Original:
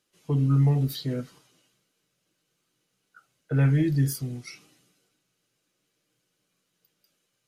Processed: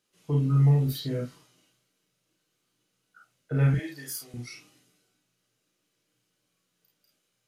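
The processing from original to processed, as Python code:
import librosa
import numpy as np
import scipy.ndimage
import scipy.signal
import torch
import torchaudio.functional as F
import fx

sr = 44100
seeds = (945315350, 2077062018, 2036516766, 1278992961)

p1 = fx.highpass(x, sr, hz=670.0, slope=12, at=(3.74, 4.34))
p2 = p1 + fx.room_early_taps(p1, sr, ms=(34, 50), db=(-4.0, -5.0), dry=0)
y = F.gain(torch.from_numpy(p2), -3.0).numpy()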